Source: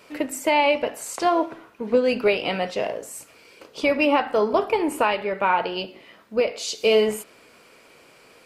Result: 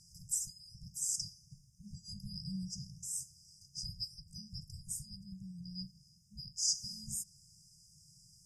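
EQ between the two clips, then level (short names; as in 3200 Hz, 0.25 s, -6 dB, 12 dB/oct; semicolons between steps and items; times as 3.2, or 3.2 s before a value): brick-wall FIR band-stop 180–4800 Hz; LPF 7800 Hz 12 dB/oct; +2.5 dB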